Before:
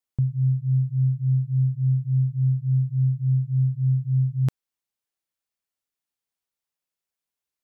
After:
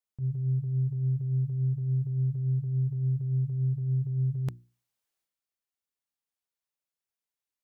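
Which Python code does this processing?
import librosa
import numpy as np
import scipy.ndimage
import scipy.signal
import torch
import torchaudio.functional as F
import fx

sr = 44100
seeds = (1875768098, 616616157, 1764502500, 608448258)

y = fx.transient(x, sr, attack_db=-10, sustain_db=8)
y = fx.hum_notches(y, sr, base_hz=60, count=6)
y = y * librosa.db_to_amplitude(-5.0)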